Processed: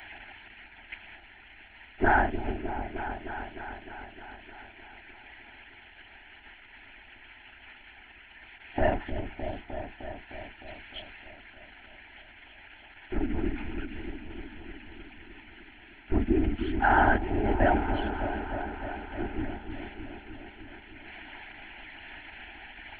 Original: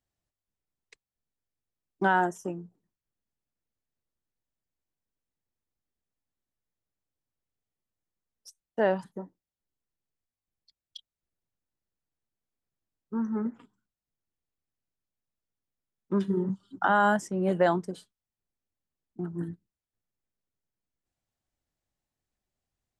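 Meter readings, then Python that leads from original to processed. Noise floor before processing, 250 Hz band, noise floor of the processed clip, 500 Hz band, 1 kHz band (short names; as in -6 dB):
under -85 dBFS, +0.5 dB, -53 dBFS, -1.0 dB, +1.5 dB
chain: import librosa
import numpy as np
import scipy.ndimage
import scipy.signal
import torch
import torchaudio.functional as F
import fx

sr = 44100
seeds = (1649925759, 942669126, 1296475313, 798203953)

y = x + 0.5 * 10.0 ** (-19.0 / 20.0) * np.diff(np.sign(x), prepend=np.sign(x[:1]))
y = fx.whisperise(y, sr, seeds[0])
y = fx.lpc_vocoder(y, sr, seeds[1], excitation='whisper', order=10)
y = fx.fixed_phaser(y, sr, hz=760.0, stages=8)
y = fx.echo_opening(y, sr, ms=306, hz=400, octaves=1, feedback_pct=70, wet_db=-6)
y = y * librosa.db_to_amplitude(3.5)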